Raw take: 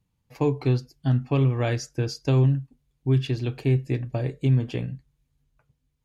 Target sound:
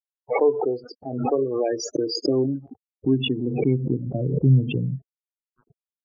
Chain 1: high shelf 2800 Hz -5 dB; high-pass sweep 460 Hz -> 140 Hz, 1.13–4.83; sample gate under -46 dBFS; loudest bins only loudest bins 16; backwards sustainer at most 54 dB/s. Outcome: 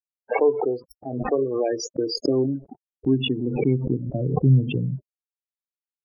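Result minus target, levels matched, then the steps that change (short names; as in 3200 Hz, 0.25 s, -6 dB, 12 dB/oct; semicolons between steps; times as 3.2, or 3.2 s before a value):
sample gate: distortion +9 dB
change: sample gate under -54.5 dBFS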